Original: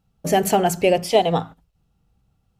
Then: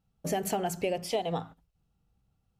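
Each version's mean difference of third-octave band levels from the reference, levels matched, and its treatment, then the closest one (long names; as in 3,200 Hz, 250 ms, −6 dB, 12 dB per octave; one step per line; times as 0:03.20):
2.0 dB: downward compressor 4 to 1, threshold −19 dBFS, peak gain reduction 8 dB
level −8 dB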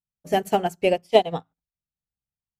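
7.5 dB: expander for the loud parts 2.5 to 1, over −34 dBFS
level +1.5 dB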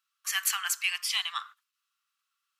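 19.5 dB: Chebyshev high-pass filter 1,100 Hz, order 6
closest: first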